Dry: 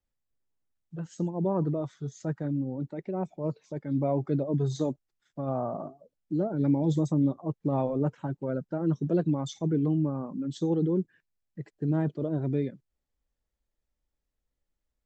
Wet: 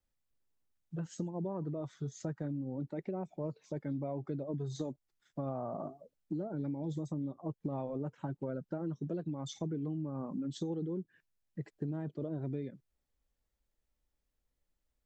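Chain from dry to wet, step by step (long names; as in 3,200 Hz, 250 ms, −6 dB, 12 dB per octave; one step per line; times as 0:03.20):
downward compressor 12 to 1, threshold −34 dBFS, peak gain reduction 14.5 dB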